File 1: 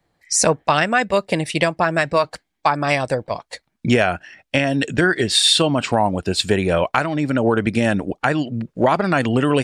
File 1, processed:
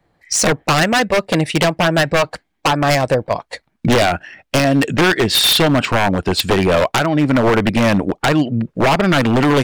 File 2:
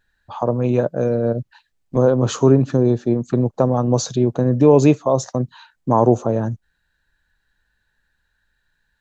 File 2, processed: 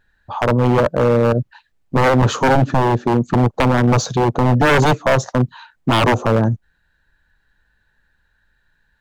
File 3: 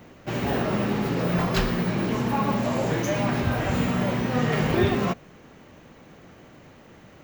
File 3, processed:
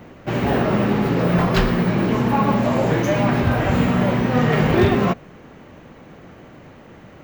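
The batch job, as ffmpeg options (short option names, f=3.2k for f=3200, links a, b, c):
-filter_complex "[0:a]asplit=2[a][b];[b]adynamicsmooth=sensitivity=1:basefreq=4k,volume=1dB[c];[a][c]amix=inputs=2:normalize=0,aeval=exprs='0.422*(abs(mod(val(0)/0.422+3,4)-2)-1)':c=same"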